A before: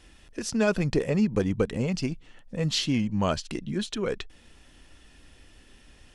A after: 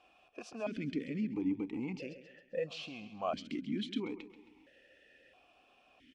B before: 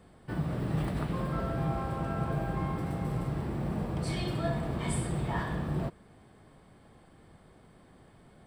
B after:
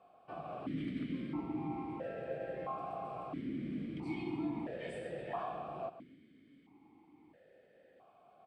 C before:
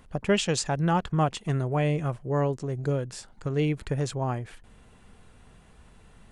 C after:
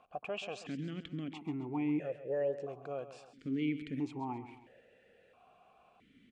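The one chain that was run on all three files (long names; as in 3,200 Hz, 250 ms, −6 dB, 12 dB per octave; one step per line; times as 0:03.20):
brickwall limiter −22 dBFS
repeating echo 134 ms, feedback 45%, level −13 dB
formant filter that steps through the vowels 1.5 Hz
level +6 dB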